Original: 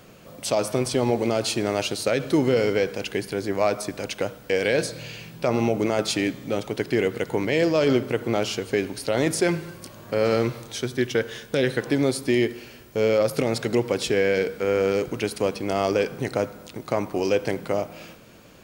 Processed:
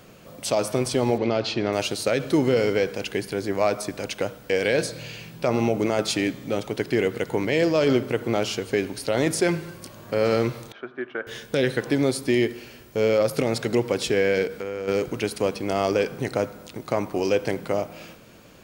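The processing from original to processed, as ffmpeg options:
ffmpeg -i in.wav -filter_complex "[0:a]asettb=1/sr,asplit=3[link_01][link_02][link_03];[link_01]atrim=end=1.184[link_04];[link_02]atrim=start=1.18:end=1.73,asetpts=PTS-STARTPTS,afade=type=in:duration=0.004:curve=qsin,afade=type=out:start_time=0.546:duration=0.004:curve=qsin,lowpass=frequency=4800:width=0.5412,lowpass=frequency=4800:width=1.3066[link_05];[link_03]atrim=start=1.726[link_06];[link_04][link_05]acrossfade=duration=0.004:curve1=hsin:curve2=qsin[link_07];[link_07][link_06]acrossfade=duration=0.004:curve1=qsin:curve2=hsin,asettb=1/sr,asplit=3[link_08][link_09][link_10];[link_08]atrim=end=10.724[link_11];[link_09]atrim=start=10.72:end=11.27,asetpts=PTS-STARTPTS,afade=type=in:duration=0.004:curve=qsin,afade=type=out:start_time=0.546:duration=0.004:curve=qsin,highpass=460,equalizer=frequency=480:width_type=q:width=4:gain=-9,equalizer=frequency=900:width_type=q:width=4:gain=-5,equalizer=frequency=1300:width_type=q:width=4:gain=4,equalizer=frequency=2000:width_type=q:width=4:gain=-8,lowpass=frequency=2000:width=0.5412,lowpass=frequency=2000:width=1.3066[link_12];[link_10]atrim=start=11.266[link_13];[link_11][link_12]acrossfade=duration=0.004:curve1=hsin:curve2=qsin[link_14];[link_14][link_13]acrossfade=duration=0.004:curve1=qsin:curve2=hsin,asplit=3[link_15][link_16][link_17];[link_15]afade=type=out:start_time=14.46:duration=0.02[link_18];[link_16]acompressor=threshold=-27dB:ratio=6:attack=3.2:release=140:knee=1:detection=peak,afade=type=in:start_time=14.46:duration=0.02,afade=type=out:start_time=14.87:duration=0.02[link_19];[link_17]afade=type=in:start_time=14.87:duration=0.02[link_20];[link_18][link_19][link_20]amix=inputs=3:normalize=0" out.wav

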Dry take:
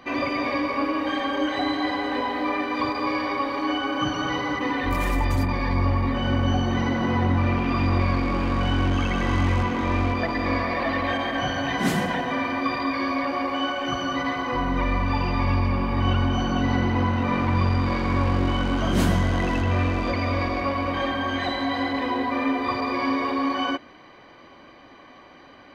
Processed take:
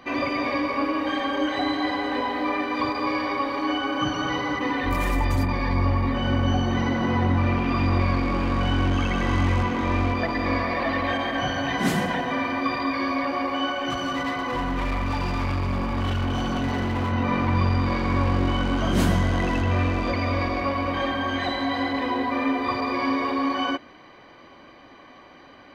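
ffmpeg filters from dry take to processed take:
ffmpeg -i in.wav -filter_complex "[0:a]asettb=1/sr,asplit=3[link_01][link_02][link_03];[link_01]atrim=end=13.904[link_04];[link_02]atrim=start=13.9:end=17.12,asetpts=PTS-STARTPTS,afade=type=in:duration=0.004:curve=qsin,afade=type=out:start_time=3.216:duration=0.004:curve=qsin,volume=22dB,asoftclip=hard,volume=-22dB[link_05];[link_03]atrim=start=17.116[link_06];[link_04][link_05]acrossfade=duration=0.004:curve1=hsin:curve2=qsin[link_07];[link_07][link_06]acrossfade=duration=0.004:curve1=qsin:curve2=hsin" out.wav

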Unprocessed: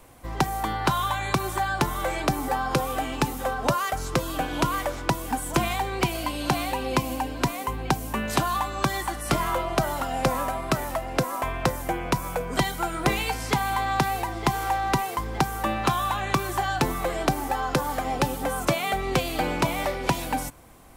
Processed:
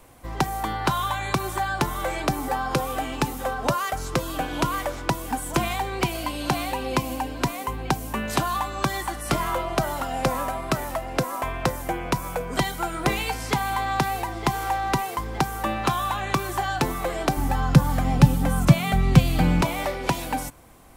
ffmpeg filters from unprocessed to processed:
ffmpeg -i in.wav -filter_complex "[0:a]asettb=1/sr,asplit=3[link_01][link_02][link_03];[link_01]atrim=end=17.374[link_04];[link_02]atrim=start=17.37:end=19.62,asetpts=PTS-STARTPTS,afade=type=in:duration=0.004:curve=qsin,afade=type=out:start_time=2.246:duration=0.004:curve=qsin,lowshelf=frequency=260:width_type=q:width=1.5:gain=12.5[link_05];[link_03]atrim=start=19.616[link_06];[link_04][link_05]acrossfade=duration=0.004:curve1=hsin:curve2=qsin[link_07];[link_07][link_06]acrossfade=duration=0.004:curve1=qsin:curve2=hsin" out.wav

